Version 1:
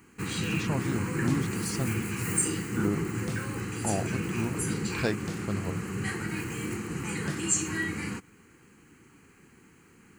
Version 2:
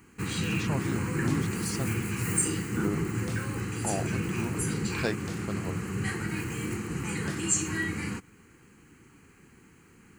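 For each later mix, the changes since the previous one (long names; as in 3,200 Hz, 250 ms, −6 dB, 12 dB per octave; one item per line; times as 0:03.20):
first sound: add low-shelf EQ 160 Hz +10 dB
master: add low-shelf EQ 260 Hz −5 dB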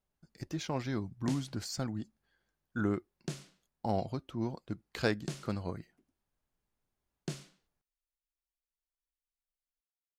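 first sound: muted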